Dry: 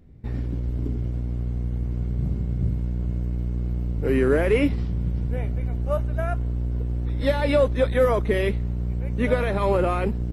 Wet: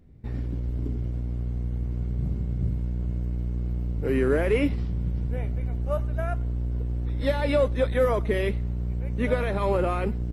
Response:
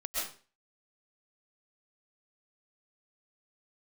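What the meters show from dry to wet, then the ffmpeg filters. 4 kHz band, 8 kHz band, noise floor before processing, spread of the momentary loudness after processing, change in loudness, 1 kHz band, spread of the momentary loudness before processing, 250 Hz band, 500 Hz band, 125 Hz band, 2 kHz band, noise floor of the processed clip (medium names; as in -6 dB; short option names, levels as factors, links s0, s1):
-3.0 dB, no reading, -28 dBFS, 7 LU, -2.5 dB, -3.0 dB, 8 LU, -3.0 dB, -3.0 dB, -2.5 dB, -3.0 dB, -30 dBFS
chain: -filter_complex "[0:a]asplit=2[s0][s1];[1:a]atrim=start_sample=2205,afade=t=out:st=0.16:d=0.01,atrim=end_sample=7497,asetrate=48510,aresample=44100[s2];[s1][s2]afir=irnorm=-1:irlink=0,volume=0.2[s3];[s0][s3]amix=inputs=2:normalize=0,volume=0.631"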